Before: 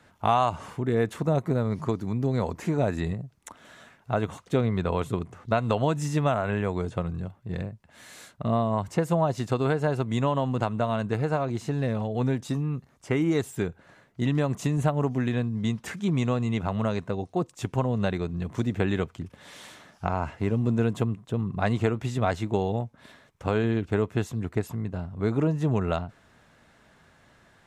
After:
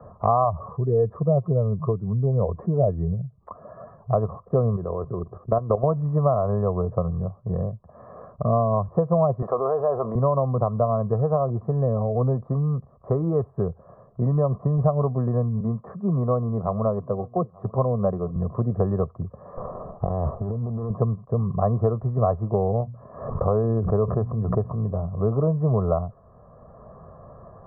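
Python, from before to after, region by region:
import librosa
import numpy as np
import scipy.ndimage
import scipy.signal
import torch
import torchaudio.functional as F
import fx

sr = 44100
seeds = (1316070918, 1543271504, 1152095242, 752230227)

y = fx.chain(x, sr, fx.spec_expand(power=1.5),
    fx.peak_eq(hz=240.0, db=-6.0, octaves=0.23), at=(0.44, 4.13))
y = fx.chain(y, sr, fx.level_steps(step_db=12),
    fx.small_body(hz=(350.0, 1600.0, 2300.0), ring_ms=25, db=8), at=(4.76, 5.84))
y = fx.chain(y, sr, fx.highpass(hz=490.0, slope=12),
    fx.env_flatten(amount_pct=70), at=(9.42, 10.15))
y = fx.chain(y, sr, fx.highpass(hz=120.0, slope=12),
    fx.echo_single(ms=890, db=-24.0),
    fx.band_widen(depth_pct=40), at=(15.6, 18.36))
y = fx.chain(y, sr, fx.over_compress(threshold_db=-33.0, ratio=-1.0),
    fx.running_max(window=17), at=(19.57, 20.9))
y = fx.chain(y, sr, fx.hum_notches(base_hz=60, count=4),
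    fx.pre_swell(db_per_s=67.0), at=(22.81, 25.2))
y = scipy.signal.sosfilt(scipy.signal.ellip(4, 1.0, 60, 1100.0, 'lowpass', fs=sr, output='sos'), y)
y = y + 0.73 * np.pad(y, (int(1.7 * sr / 1000.0), 0))[:len(y)]
y = fx.band_squash(y, sr, depth_pct=40)
y = y * 10.0 ** (3.0 / 20.0)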